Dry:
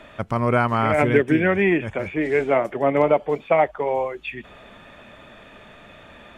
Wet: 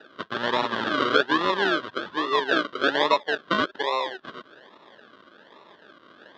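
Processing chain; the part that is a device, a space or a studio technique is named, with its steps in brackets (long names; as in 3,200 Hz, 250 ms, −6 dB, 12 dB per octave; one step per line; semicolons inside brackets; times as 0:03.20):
circuit-bent sampling toy (sample-and-hold swept by an LFO 40×, swing 60% 1.2 Hz; loudspeaker in its box 420–4,000 Hz, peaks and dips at 500 Hz −3 dB, 730 Hz −8 dB, 1,100 Hz +6 dB, 1,600 Hz +8 dB, 2,300 Hz −10 dB, 3,400 Hz +7 dB)
level −1 dB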